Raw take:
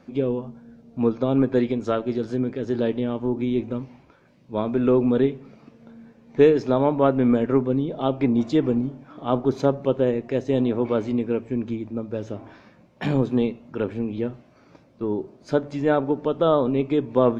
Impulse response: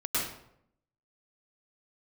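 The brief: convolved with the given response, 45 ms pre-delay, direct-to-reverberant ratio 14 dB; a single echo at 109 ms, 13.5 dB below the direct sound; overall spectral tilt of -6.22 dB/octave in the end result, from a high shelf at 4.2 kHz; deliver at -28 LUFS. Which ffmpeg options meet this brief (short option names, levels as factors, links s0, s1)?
-filter_complex "[0:a]highshelf=f=4200:g=7,aecho=1:1:109:0.211,asplit=2[s0][s1];[1:a]atrim=start_sample=2205,adelay=45[s2];[s1][s2]afir=irnorm=-1:irlink=0,volume=0.075[s3];[s0][s3]amix=inputs=2:normalize=0,volume=0.562"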